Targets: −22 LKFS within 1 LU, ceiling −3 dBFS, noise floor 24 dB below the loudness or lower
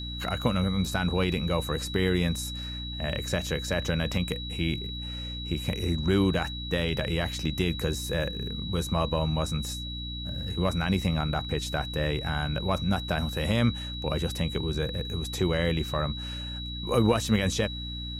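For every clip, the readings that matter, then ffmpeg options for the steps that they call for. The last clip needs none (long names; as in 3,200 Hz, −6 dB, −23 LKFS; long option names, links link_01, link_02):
mains hum 60 Hz; hum harmonics up to 300 Hz; level of the hum −35 dBFS; interfering tone 3,900 Hz; level of the tone −37 dBFS; integrated loudness −29.0 LKFS; sample peak −10.0 dBFS; target loudness −22.0 LKFS
→ -af "bandreject=frequency=60:width_type=h:width=6,bandreject=frequency=120:width_type=h:width=6,bandreject=frequency=180:width_type=h:width=6,bandreject=frequency=240:width_type=h:width=6,bandreject=frequency=300:width_type=h:width=6"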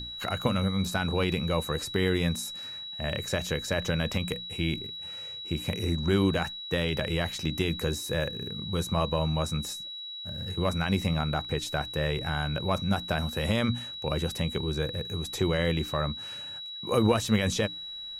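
mains hum none found; interfering tone 3,900 Hz; level of the tone −37 dBFS
→ -af "bandreject=frequency=3900:width=30"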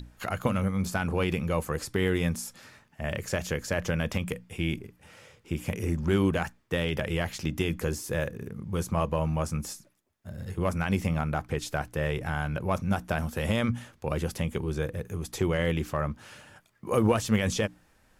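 interfering tone none found; integrated loudness −30.0 LKFS; sample peak −12.0 dBFS; target loudness −22.0 LKFS
→ -af "volume=8dB"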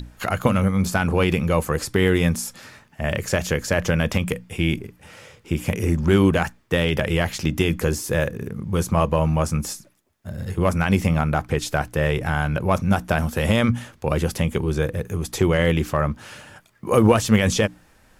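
integrated loudness −22.0 LKFS; sample peak −4.0 dBFS; background noise floor −56 dBFS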